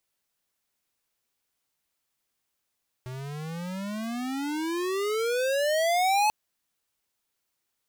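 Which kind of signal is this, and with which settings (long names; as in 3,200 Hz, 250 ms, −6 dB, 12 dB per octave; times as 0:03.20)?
pitch glide with a swell square, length 3.24 s, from 125 Hz, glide +33.5 semitones, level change +15 dB, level −22 dB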